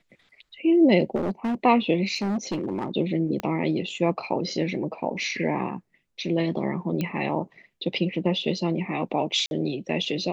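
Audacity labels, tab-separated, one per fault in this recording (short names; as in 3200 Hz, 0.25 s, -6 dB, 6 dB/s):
1.150000	1.550000	clipped -22.5 dBFS
2.150000	2.900000	clipped -23 dBFS
3.400000	3.400000	pop -15 dBFS
7.010000	7.010000	pop -15 dBFS
9.460000	9.510000	gap 51 ms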